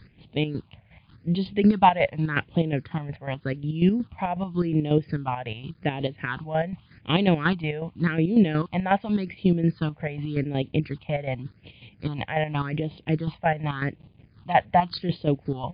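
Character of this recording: a quantiser's noise floor 10-bit, dither none; chopped level 5.5 Hz, depth 60%, duty 40%; phasing stages 6, 0.87 Hz, lowest notch 320–1500 Hz; MP3

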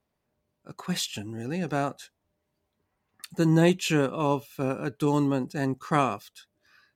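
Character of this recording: noise floor -80 dBFS; spectral tilt -5.5 dB/oct

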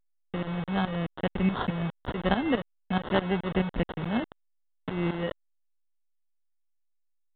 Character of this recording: aliases and images of a low sample rate 2400 Hz, jitter 0%; tremolo saw up 4.7 Hz, depth 80%; a quantiser's noise floor 6-bit, dither none; A-law

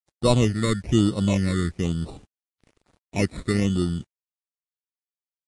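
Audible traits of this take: aliases and images of a low sample rate 1600 Hz, jitter 0%; phasing stages 8, 1.1 Hz, lowest notch 790–2100 Hz; a quantiser's noise floor 10-bit, dither none; Vorbis

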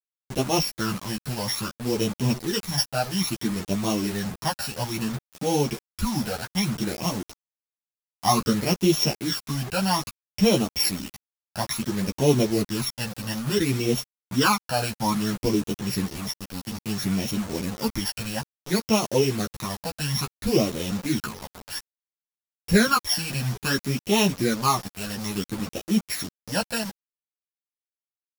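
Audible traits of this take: a buzz of ramps at a fixed pitch in blocks of 8 samples; phasing stages 12, 0.59 Hz, lowest notch 350–1600 Hz; a quantiser's noise floor 6-bit, dither none; a shimmering, thickened sound

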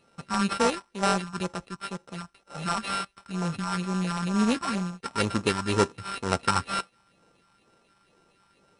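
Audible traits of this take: a buzz of ramps at a fixed pitch in blocks of 32 samples; phasing stages 4, 2.1 Hz, lowest notch 420–4800 Hz; aliases and images of a low sample rate 6700 Hz, jitter 0%; MP2

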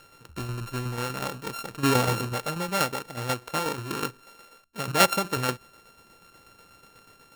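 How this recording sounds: a buzz of ramps at a fixed pitch in blocks of 32 samples; tremolo saw down 8.2 Hz, depth 55%

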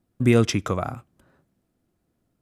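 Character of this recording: noise floor -74 dBFS; spectral tilt -6.5 dB/oct

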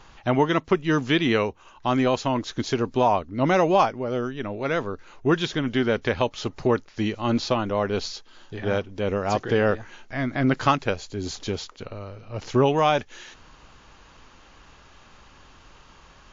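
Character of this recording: WMA

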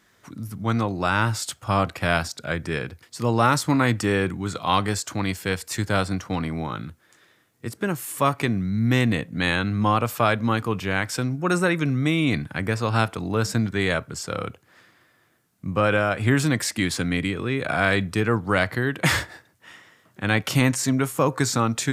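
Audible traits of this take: noise floor -62 dBFS; spectral tilt -5.0 dB/oct

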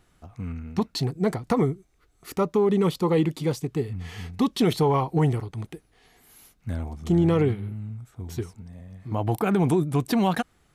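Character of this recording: noise floor -64 dBFS; spectral tilt -7.0 dB/oct

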